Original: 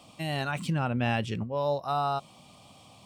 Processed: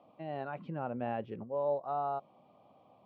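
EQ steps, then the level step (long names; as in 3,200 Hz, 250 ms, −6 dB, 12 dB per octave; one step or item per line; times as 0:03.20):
resonant band-pass 540 Hz, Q 1.1
high-frequency loss of the air 260 metres
−2.0 dB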